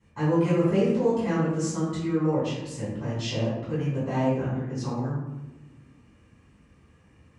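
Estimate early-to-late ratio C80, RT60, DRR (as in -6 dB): 3.0 dB, 1.1 s, -12.0 dB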